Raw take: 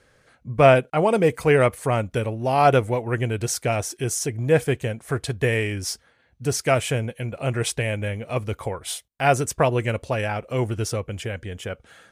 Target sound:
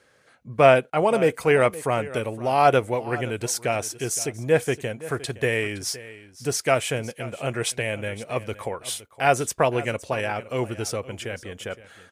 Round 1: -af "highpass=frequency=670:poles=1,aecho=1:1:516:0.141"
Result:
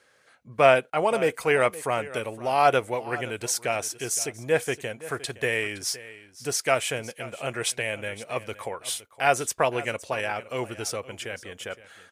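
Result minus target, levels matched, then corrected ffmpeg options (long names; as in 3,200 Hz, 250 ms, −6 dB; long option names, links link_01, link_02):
250 Hz band −3.5 dB
-af "highpass=frequency=240:poles=1,aecho=1:1:516:0.141"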